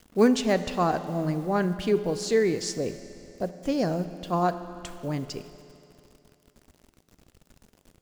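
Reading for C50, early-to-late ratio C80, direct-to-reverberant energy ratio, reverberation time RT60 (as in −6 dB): 12.0 dB, 13.0 dB, 11.5 dB, 2.9 s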